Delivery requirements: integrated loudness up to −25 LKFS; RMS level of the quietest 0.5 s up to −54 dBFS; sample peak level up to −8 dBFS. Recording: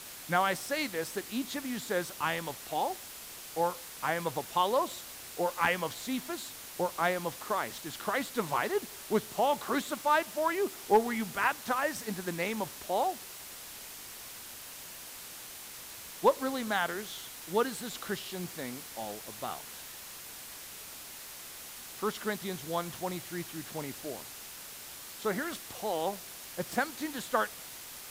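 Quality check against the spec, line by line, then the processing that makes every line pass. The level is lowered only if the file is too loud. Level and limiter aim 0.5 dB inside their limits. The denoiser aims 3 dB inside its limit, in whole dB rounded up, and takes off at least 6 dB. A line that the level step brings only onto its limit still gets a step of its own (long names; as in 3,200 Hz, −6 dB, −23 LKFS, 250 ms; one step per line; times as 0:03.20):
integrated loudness −34.0 LKFS: in spec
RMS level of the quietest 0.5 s −46 dBFS: out of spec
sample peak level −13.0 dBFS: in spec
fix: broadband denoise 11 dB, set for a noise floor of −46 dBFS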